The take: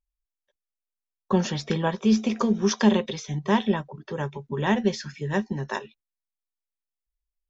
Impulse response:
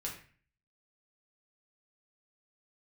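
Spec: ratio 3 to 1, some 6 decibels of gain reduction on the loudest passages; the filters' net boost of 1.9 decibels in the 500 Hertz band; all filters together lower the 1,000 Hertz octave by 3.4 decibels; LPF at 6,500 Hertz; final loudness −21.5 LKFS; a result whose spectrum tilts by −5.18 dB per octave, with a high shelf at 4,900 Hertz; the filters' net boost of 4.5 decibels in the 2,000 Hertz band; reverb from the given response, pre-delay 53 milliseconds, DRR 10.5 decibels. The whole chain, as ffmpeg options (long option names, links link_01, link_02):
-filter_complex "[0:a]lowpass=6500,equalizer=frequency=500:width_type=o:gain=3.5,equalizer=frequency=1000:width_type=o:gain=-6.5,equalizer=frequency=2000:width_type=o:gain=8,highshelf=frequency=4900:gain=-6,acompressor=threshold=-21dB:ratio=3,asplit=2[link_01][link_02];[1:a]atrim=start_sample=2205,adelay=53[link_03];[link_02][link_03]afir=irnorm=-1:irlink=0,volume=-11dB[link_04];[link_01][link_04]amix=inputs=2:normalize=0,volume=6.5dB"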